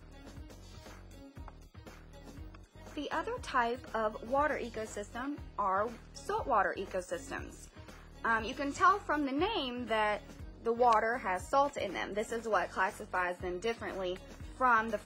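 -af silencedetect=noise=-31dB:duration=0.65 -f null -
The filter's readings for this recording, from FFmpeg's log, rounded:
silence_start: 0.00
silence_end: 2.97 | silence_duration: 2.97
silence_start: 7.38
silence_end: 8.25 | silence_duration: 0.86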